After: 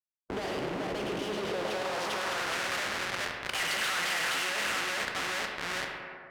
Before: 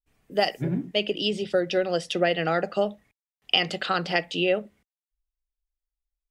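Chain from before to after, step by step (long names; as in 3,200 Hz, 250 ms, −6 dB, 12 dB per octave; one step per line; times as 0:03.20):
brickwall limiter −14.5 dBFS, peak gain reduction 9 dB
0:02.12–0:03.55: output level in coarse steps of 22 dB
mid-hump overdrive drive 10 dB, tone 4,400 Hz, clips at −14.5 dBFS
echo with a time of its own for lows and highs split 2,400 Hz, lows 419 ms, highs 105 ms, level −9 dB
comparator with hysteresis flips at −41.5 dBFS
band-pass filter sweep 390 Hz → 1,800 Hz, 0:01.36–0:02.59
convolution reverb RT60 1.4 s, pre-delay 7 ms, DRR 4.5 dB
every bin compressed towards the loudest bin 2 to 1
level +3.5 dB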